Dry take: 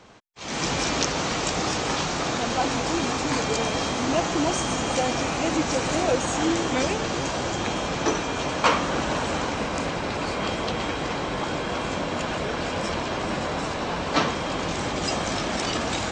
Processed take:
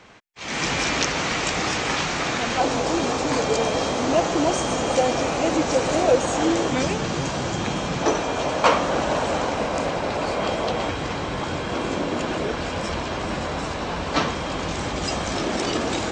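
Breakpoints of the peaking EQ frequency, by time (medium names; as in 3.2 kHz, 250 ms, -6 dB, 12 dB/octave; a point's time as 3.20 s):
peaking EQ +6.5 dB 1.1 oct
2.1 kHz
from 2.60 s 530 Hz
from 6.70 s 150 Hz
from 8.02 s 620 Hz
from 10.89 s 89 Hz
from 11.73 s 340 Hz
from 12.52 s 61 Hz
from 15.35 s 370 Hz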